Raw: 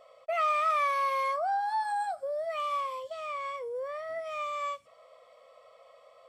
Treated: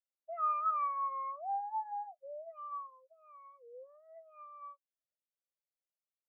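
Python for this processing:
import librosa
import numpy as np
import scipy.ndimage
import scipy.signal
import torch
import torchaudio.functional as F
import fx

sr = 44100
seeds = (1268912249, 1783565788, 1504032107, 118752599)

y = fx.spectral_expand(x, sr, expansion=2.5)
y = y * 10.0 ** (-5.5 / 20.0)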